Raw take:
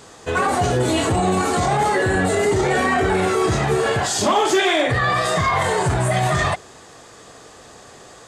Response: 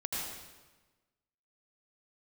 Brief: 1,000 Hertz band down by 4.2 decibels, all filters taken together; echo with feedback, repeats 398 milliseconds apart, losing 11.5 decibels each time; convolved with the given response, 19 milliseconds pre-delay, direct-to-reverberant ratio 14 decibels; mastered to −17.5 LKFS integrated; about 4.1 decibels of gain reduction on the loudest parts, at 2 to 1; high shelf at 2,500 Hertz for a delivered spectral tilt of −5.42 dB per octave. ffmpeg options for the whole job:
-filter_complex "[0:a]equalizer=frequency=1000:width_type=o:gain=-4.5,highshelf=frequency=2500:gain=-7.5,acompressor=threshold=-23dB:ratio=2,aecho=1:1:398|796|1194:0.266|0.0718|0.0194,asplit=2[link_01][link_02];[1:a]atrim=start_sample=2205,adelay=19[link_03];[link_02][link_03]afir=irnorm=-1:irlink=0,volume=-18dB[link_04];[link_01][link_04]amix=inputs=2:normalize=0,volume=6.5dB"

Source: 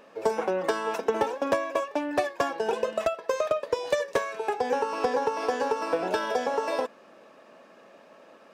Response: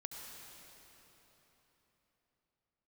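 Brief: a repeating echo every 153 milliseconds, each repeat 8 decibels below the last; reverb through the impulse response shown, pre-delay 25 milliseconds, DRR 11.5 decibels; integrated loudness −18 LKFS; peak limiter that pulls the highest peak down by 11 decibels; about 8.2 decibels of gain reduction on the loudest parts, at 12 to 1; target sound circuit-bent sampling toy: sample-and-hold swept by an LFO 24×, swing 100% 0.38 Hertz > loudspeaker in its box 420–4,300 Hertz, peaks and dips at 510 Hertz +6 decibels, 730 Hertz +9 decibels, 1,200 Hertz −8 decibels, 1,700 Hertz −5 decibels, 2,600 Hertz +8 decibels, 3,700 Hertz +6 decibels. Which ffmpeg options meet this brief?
-filter_complex "[0:a]acompressor=threshold=-29dB:ratio=12,alimiter=level_in=4dB:limit=-24dB:level=0:latency=1,volume=-4dB,aecho=1:1:153|306|459|612|765:0.398|0.159|0.0637|0.0255|0.0102,asplit=2[link_01][link_02];[1:a]atrim=start_sample=2205,adelay=25[link_03];[link_02][link_03]afir=irnorm=-1:irlink=0,volume=-9dB[link_04];[link_01][link_04]amix=inputs=2:normalize=0,acrusher=samples=24:mix=1:aa=0.000001:lfo=1:lforange=24:lforate=0.38,highpass=420,equalizer=frequency=510:width_type=q:width=4:gain=6,equalizer=frequency=730:width_type=q:width=4:gain=9,equalizer=frequency=1200:width_type=q:width=4:gain=-8,equalizer=frequency=1700:width_type=q:width=4:gain=-5,equalizer=frequency=2600:width_type=q:width=4:gain=8,equalizer=frequency=3700:width_type=q:width=4:gain=6,lowpass=frequency=4300:width=0.5412,lowpass=frequency=4300:width=1.3066,volume=16dB"

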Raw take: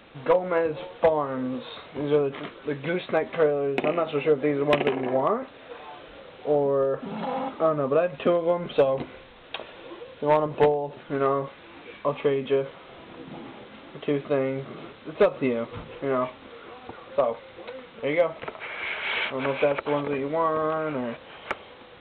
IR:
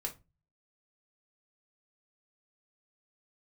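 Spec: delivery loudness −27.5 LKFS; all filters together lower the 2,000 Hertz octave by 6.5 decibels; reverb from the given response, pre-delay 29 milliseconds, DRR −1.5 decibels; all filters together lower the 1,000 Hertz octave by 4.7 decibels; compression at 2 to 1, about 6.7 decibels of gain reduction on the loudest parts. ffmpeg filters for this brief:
-filter_complex "[0:a]equalizer=frequency=1000:width_type=o:gain=-4.5,equalizer=frequency=2000:width_type=o:gain=-7,acompressor=threshold=-29dB:ratio=2,asplit=2[link_01][link_02];[1:a]atrim=start_sample=2205,adelay=29[link_03];[link_02][link_03]afir=irnorm=-1:irlink=0,volume=1dB[link_04];[link_01][link_04]amix=inputs=2:normalize=0,volume=1dB"

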